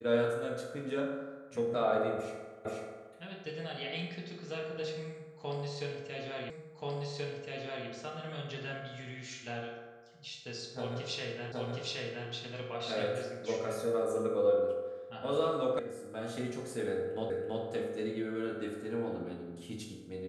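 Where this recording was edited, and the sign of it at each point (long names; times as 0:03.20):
0:02.65: the same again, the last 0.48 s
0:06.50: the same again, the last 1.38 s
0:11.52: the same again, the last 0.77 s
0:15.79: cut off before it has died away
0:17.30: the same again, the last 0.33 s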